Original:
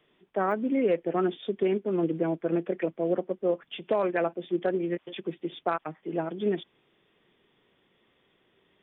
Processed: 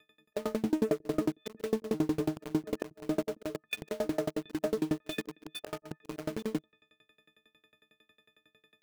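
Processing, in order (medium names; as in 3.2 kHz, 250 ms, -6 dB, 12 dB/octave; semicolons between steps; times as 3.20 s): partials quantised in pitch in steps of 6 st; low-pass that closes with the level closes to 450 Hz, closed at -24.5 dBFS; peaking EQ 940 Hz -14.5 dB 0.29 oct; slow attack 133 ms; in parallel at -7 dB: companded quantiser 2-bit; on the sum: sawtooth tremolo in dB decaying 11 Hz, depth 29 dB; trim +2.5 dB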